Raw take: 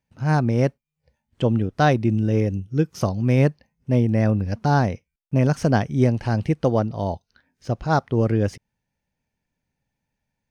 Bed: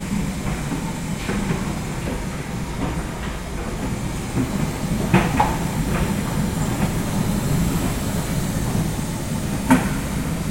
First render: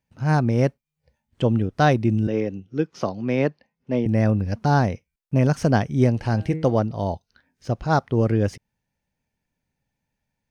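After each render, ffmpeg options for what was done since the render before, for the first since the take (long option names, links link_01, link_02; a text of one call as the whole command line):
ffmpeg -i in.wav -filter_complex "[0:a]asettb=1/sr,asplit=3[link_01][link_02][link_03];[link_01]atrim=end=2.274[link_04];[link_02]atrim=start=2.27:end=4.06,asetpts=PTS-STARTPTS,afade=type=in:duration=0.004:curve=qsin,afade=type=out:start_time=1.786:duration=0.004:curve=qsin,acrossover=split=200 5500:gain=0.178 1 0.0708[link_05][link_06][link_07];[link_05][link_06][link_07]amix=inputs=3:normalize=0[link_08];[link_03]atrim=start=4.056[link_09];[link_04][link_08]acrossfade=duration=0.004:curve1=hsin:curve2=qsin[link_10];[link_10][link_09]acrossfade=duration=0.004:curve1=qsin:curve2=hsin,asettb=1/sr,asplit=3[link_11][link_12][link_13];[link_11]atrim=end=6.124[link_14];[link_12]atrim=start=6.12:end=6.77,asetpts=PTS-STARTPTS,afade=type=in:duration=0.004:curve=qsin,afade=type=out:start_time=0.646:duration=0.004:curve=qsin,bandreject=frequency=158.6:width_type=h:width=4,bandreject=frequency=317.2:width_type=h:width=4,bandreject=frequency=475.8:width_type=h:width=4,bandreject=frequency=634.4:width_type=h:width=4,bandreject=frequency=793:width_type=h:width=4,bandreject=frequency=951.6:width_type=h:width=4,bandreject=frequency=1110.2:width_type=h:width=4,bandreject=frequency=1268.8:width_type=h:width=4,bandreject=frequency=1427.4:width_type=h:width=4,bandreject=frequency=1586:width_type=h:width=4,bandreject=frequency=1744.6:width_type=h:width=4,bandreject=frequency=1903.2:width_type=h:width=4,bandreject=frequency=2061.8:width_type=h:width=4,bandreject=frequency=2220.4:width_type=h:width=4,bandreject=frequency=2379:width_type=h:width=4,bandreject=frequency=2537.6:width_type=h:width=4,bandreject=frequency=2696.2:width_type=h:width=4,bandreject=frequency=2854.8:width_type=h:width=4,bandreject=frequency=3013.4:width_type=h:width=4,bandreject=frequency=3172:width_type=h:width=4,bandreject=frequency=3330.6:width_type=h:width=4,bandreject=frequency=3489.2:width_type=h:width=4,bandreject=frequency=3647.8:width_type=h:width=4,bandreject=frequency=3806.4:width_type=h:width=4,bandreject=frequency=3965:width_type=h:width=4,bandreject=frequency=4123.6:width_type=h:width=4[link_15];[link_13]atrim=start=6.766[link_16];[link_14][link_15]acrossfade=duration=0.004:curve1=hsin:curve2=qsin[link_17];[link_17][link_16]acrossfade=duration=0.004:curve1=qsin:curve2=hsin" out.wav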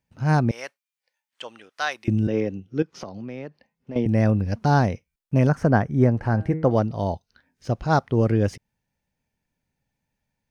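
ffmpeg -i in.wav -filter_complex "[0:a]asettb=1/sr,asplit=3[link_01][link_02][link_03];[link_01]atrim=end=0.514[link_04];[link_02]atrim=start=0.51:end=2.08,asetpts=PTS-STARTPTS,afade=type=in:duration=0.004:curve=qsin,afade=type=out:start_time=1.566:duration=0.004:curve=qsin,highpass=1300[link_05];[link_03]atrim=start=2.076[link_06];[link_04][link_05]acrossfade=duration=0.004:curve1=hsin:curve2=qsin[link_07];[link_07][link_06]acrossfade=duration=0.004:curve1=qsin:curve2=hsin,asettb=1/sr,asplit=3[link_08][link_09][link_10];[link_08]atrim=end=2.824[link_11];[link_09]atrim=start=2.82:end=3.96,asetpts=PTS-STARTPTS,afade=type=in:duration=0.004:curve=qsin,afade=type=out:start_time=1.136:duration=0.004:curve=qsin,acompressor=threshold=-31dB:ratio=6:attack=3.2:release=140:knee=1:detection=peak[link_12];[link_10]atrim=start=3.956[link_13];[link_11][link_12]acrossfade=duration=0.004:curve1=hsin:curve2=qsin[link_14];[link_14][link_13]acrossfade=duration=0.004:curve1=qsin:curve2=hsin,asettb=1/sr,asplit=3[link_15][link_16][link_17];[link_15]atrim=end=5.494[link_18];[link_16]atrim=start=5.49:end=6.71,asetpts=PTS-STARTPTS,afade=type=in:duration=0.004:curve=qsin,afade=type=out:start_time=1.216:duration=0.004:curve=qsin,highshelf=frequency=2200:width_type=q:width=1.5:gain=-10[link_19];[link_17]atrim=start=6.706[link_20];[link_18][link_19]acrossfade=duration=0.004:curve1=hsin:curve2=qsin[link_21];[link_21][link_20]acrossfade=duration=0.004:curve1=qsin:curve2=hsin" out.wav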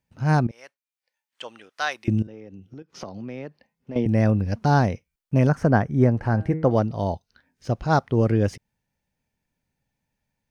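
ffmpeg -i in.wav -filter_complex "[0:a]asettb=1/sr,asplit=3[link_01][link_02][link_03];[link_01]atrim=end=2.224[link_04];[link_02]atrim=start=2.22:end=2.9,asetpts=PTS-STARTPTS,afade=type=in:duration=0.004:curve=qsin,afade=type=out:start_time=0.676:duration=0.004:curve=qsin,acompressor=threshold=-37dB:ratio=8:attack=3.2:release=140:knee=1:detection=peak[link_05];[link_03]atrim=start=2.896[link_06];[link_04][link_05]acrossfade=duration=0.004:curve1=hsin:curve2=qsin[link_07];[link_07][link_06]acrossfade=duration=0.004:curve1=qsin:curve2=hsin,asplit=2[link_08][link_09];[link_08]atrim=end=0.47,asetpts=PTS-STARTPTS,afade=type=out:start_time=0.466:duration=0.004:curve=hsin:silence=0.141254[link_10];[link_09]atrim=start=0.47,asetpts=PTS-STARTPTS,afade=type=in:duration=0.99:silence=0.141254[link_11];[link_10][link_11]concat=n=2:v=0:a=1" out.wav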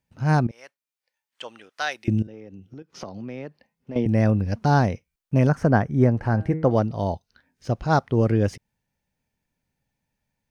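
ffmpeg -i in.wav -filter_complex "[0:a]asettb=1/sr,asplit=3[link_01][link_02][link_03];[link_01]atrim=end=1.824[link_04];[link_02]atrim=start=1.82:end=2.34,asetpts=PTS-STARTPTS,afade=type=in:duration=0.004:curve=qsin,afade=type=out:start_time=0.516:duration=0.004:curve=qsin,equalizer=frequency=1100:width=4.5:gain=-10.5[link_05];[link_03]atrim=start=2.336[link_06];[link_04][link_05]acrossfade=duration=0.004:curve1=hsin:curve2=qsin[link_07];[link_07][link_06]acrossfade=duration=0.004:curve1=qsin:curve2=hsin" out.wav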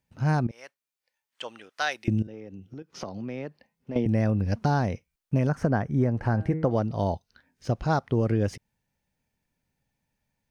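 ffmpeg -i in.wav -af "acompressor=threshold=-20dB:ratio=5" out.wav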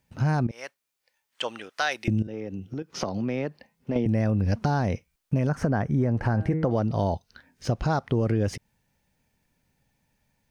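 ffmpeg -i in.wav -filter_complex "[0:a]asplit=2[link_01][link_02];[link_02]alimiter=limit=-21.5dB:level=0:latency=1:release=19,volume=3dB[link_03];[link_01][link_03]amix=inputs=2:normalize=0,acompressor=threshold=-24dB:ratio=2" out.wav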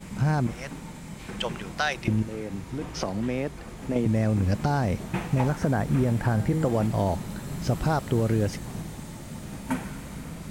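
ffmpeg -i in.wav -i bed.wav -filter_complex "[1:a]volume=-14dB[link_01];[0:a][link_01]amix=inputs=2:normalize=0" out.wav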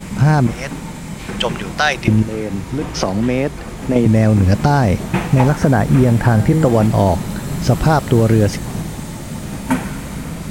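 ffmpeg -i in.wav -af "volume=11.5dB,alimiter=limit=-1dB:level=0:latency=1" out.wav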